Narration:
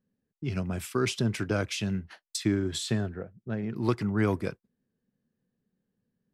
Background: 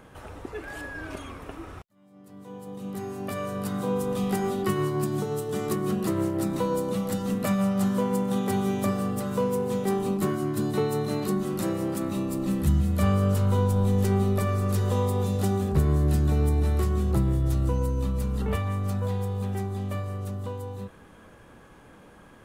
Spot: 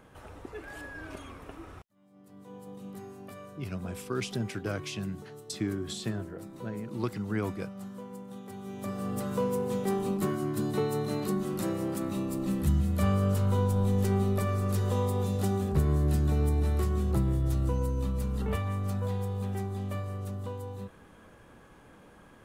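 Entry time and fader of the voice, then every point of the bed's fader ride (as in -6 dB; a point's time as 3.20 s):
3.15 s, -5.5 dB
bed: 2.68 s -5.5 dB
3.67 s -17.5 dB
8.56 s -17.5 dB
9.16 s -3.5 dB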